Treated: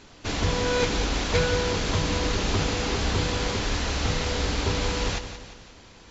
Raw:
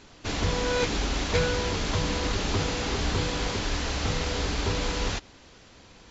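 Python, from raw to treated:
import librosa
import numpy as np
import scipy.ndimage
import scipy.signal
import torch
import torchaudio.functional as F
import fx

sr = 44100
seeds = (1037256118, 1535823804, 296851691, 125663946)

y = fx.echo_feedback(x, sr, ms=175, feedback_pct=47, wet_db=-10.5)
y = F.gain(torch.from_numpy(y), 1.5).numpy()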